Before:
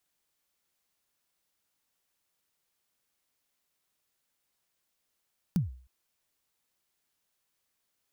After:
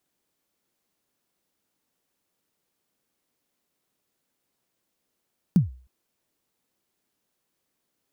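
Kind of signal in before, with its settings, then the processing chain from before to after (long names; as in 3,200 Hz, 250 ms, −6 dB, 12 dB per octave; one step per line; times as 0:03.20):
synth kick length 0.31 s, from 200 Hz, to 63 Hz, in 143 ms, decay 0.46 s, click on, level −20 dB
parametric band 270 Hz +11 dB 2.6 octaves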